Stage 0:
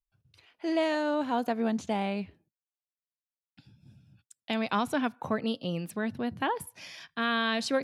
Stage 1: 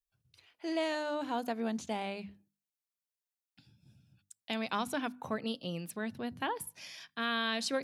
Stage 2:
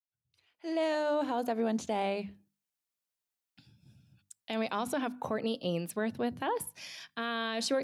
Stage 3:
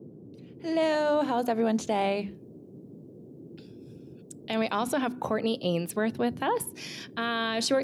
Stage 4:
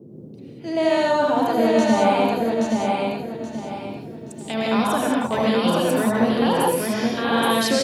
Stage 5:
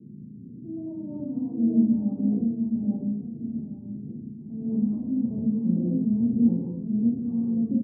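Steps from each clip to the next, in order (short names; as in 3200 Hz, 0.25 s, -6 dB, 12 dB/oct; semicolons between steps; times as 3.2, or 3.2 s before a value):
high shelf 3500 Hz +7.5 dB; notches 50/100/150/200/250/300 Hz; gain -6 dB
opening faded in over 1.44 s; dynamic EQ 520 Hz, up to +7 dB, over -48 dBFS, Q 0.72; limiter -24.5 dBFS, peak gain reduction 7.5 dB; gain +2.5 dB
band noise 110–410 Hz -52 dBFS; gain +5 dB
feedback echo 0.826 s, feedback 32%, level -3 dB; reverb, pre-delay 72 ms, DRR -3.5 dB; gain +2 dB
phaser 1.7 Hz, delay 1.1 ms, feedback 39%; ladder low-pass 280 Hz, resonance 40%; doubler 34 ms -2 dB; gain -1 dB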